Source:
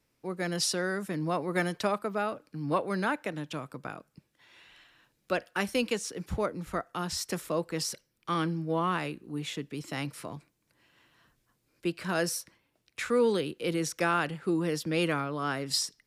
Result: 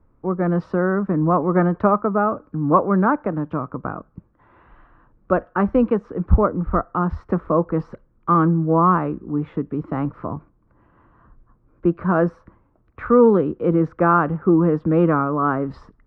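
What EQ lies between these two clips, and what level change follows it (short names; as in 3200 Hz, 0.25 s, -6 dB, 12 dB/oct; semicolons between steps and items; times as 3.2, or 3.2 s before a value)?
synth low-pass 1200 Hz, resonance Q 3.5; tilt -4.5 dB/oct; bell 140 Hz -7.5 dB 0.33 oct; +5.0 dB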